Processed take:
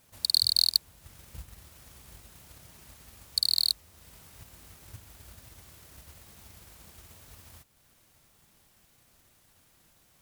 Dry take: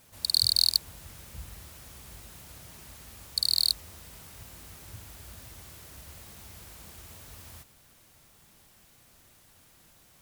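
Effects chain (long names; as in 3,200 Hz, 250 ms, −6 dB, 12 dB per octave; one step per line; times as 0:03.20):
transient designer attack +6 dB, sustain −5 dB
level −4.5 dB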